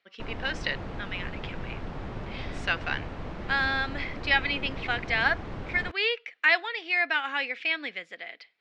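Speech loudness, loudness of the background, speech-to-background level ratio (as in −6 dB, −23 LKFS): −28.0 LKFS, −39.0 LKFS, 11.0 dB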